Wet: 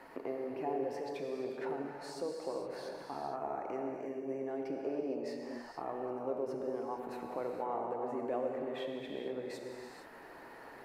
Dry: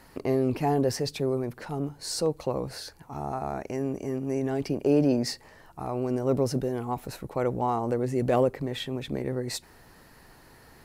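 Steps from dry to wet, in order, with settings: bell 1400 Hz -3 dB; compressor 3:1, threshold -43 dBFS, peak gain reduction 18.5 dB; three-band isolator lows -21 dB, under 280 Hz, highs -17 dB, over 2400 Hz; non-linear reverb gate 0.49 s flat, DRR 0.5 dB; gain +4 dB

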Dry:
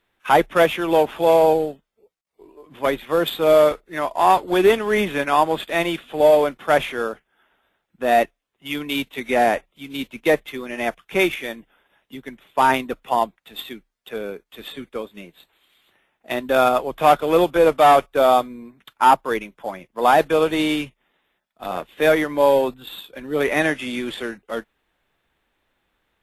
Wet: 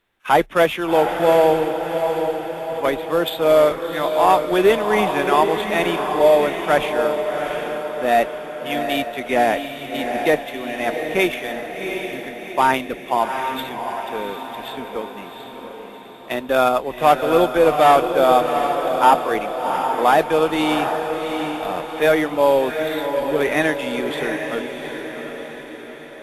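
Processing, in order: diffused feedback echo 0.737 s, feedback 53%, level -6 dB

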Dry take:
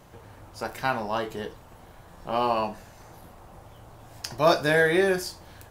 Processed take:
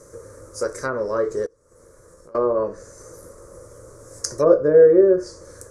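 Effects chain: treble ducked by the level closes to 770 Hz, closed at -19 dBFS; EQ curve 110 Hz 0 dB, 210 Hz -4 dB, 530 Hz +15 dB, 760 Hz -17 dB, 1200 Hz +5 dB, 2100 Hz -5 dB, 2900 Hz -24 dB, 6000 Hz +13 dB, 10000 Hz +14 dB, 15000 Hz -10 dB; 1.46–2.35 compressor 10:1, threshold -47 dBFS, peak gain reduction 25.5 dB; gain +1 dB

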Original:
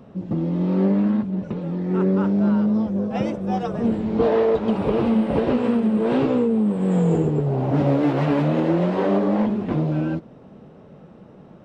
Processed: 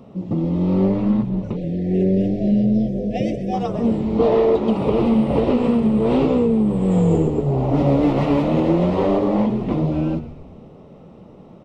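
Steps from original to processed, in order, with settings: bell 1600 Hz -15 dB 0.26 oct; notches 50/100/150/200 Hz; on a send: frequency-shifting echo 0.123 s, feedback 52%, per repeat -84 Hz, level -13 dB; on the sum: spectral delete 1.56–3.53, 770–1600 Hz; gain +2.5 dB

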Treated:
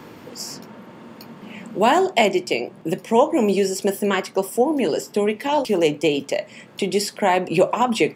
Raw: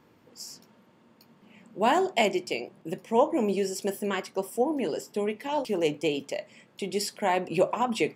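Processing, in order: three-band squash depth 40%; gain +8 dB

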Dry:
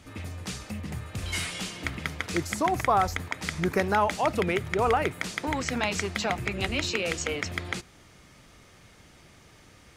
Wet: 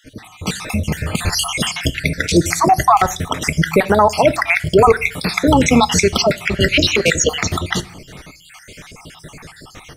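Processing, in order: random spectral dropouts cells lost 57%; AGC gain up to 13.5 dB; on a send at -14 dB: reverb RT60 0.45 s, pre-delay 5 ms; on the sum: maximiser +7.5 dB; gain -1 dB

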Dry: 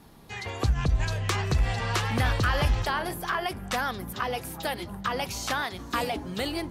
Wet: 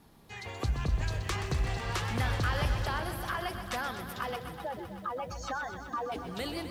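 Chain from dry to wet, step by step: 4.36–6.12 spectral contrast raised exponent 2.5; lo-fi delay 0.126 s, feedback 80%, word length 9-bit, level -10 dB; gain -6.5 dB

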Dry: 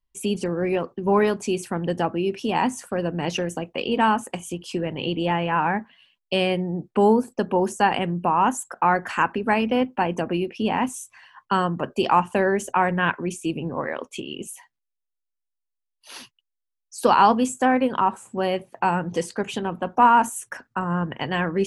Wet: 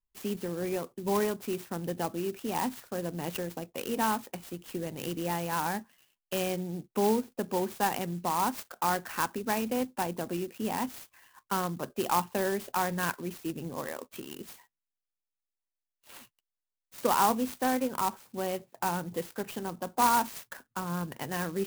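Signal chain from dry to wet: clock jitter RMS 0.058 ms; gain -9 dB

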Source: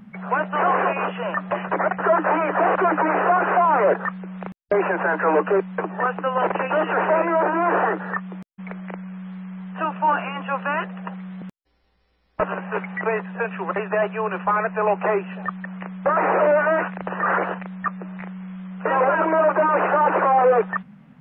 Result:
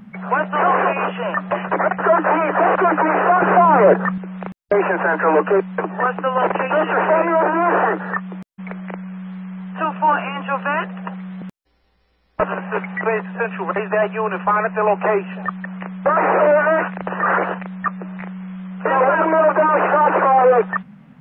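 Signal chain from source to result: 3.42–4.18 low shelf 360 Hz +9.5 dB; gain +3.5 dB

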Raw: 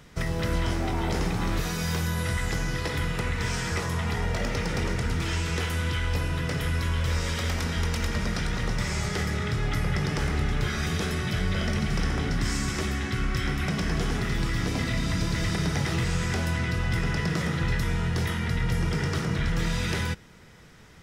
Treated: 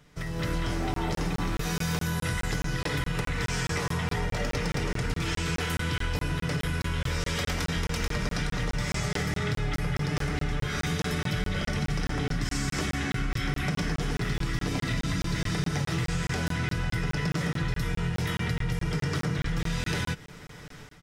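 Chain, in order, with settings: AGC gain up to 15 dB; comb 6.8 ms, depth 43%; compressor, threshold -17 dBFS, peak gain reduction 10 dB; crackling interface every 0.21 s, samples 1024, zero, from 0.94; gain -8.5 dB

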